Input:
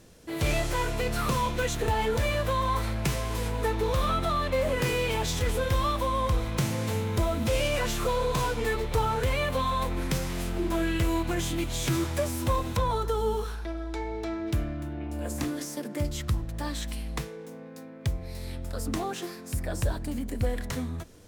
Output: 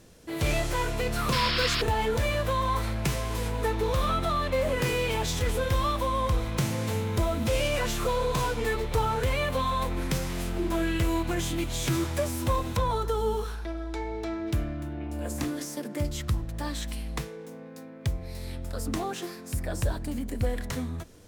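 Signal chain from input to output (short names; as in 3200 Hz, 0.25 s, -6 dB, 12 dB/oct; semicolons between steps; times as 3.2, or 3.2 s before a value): painted sound noise, 1.32–1.82, 1000–5500 Hz -29 dBFS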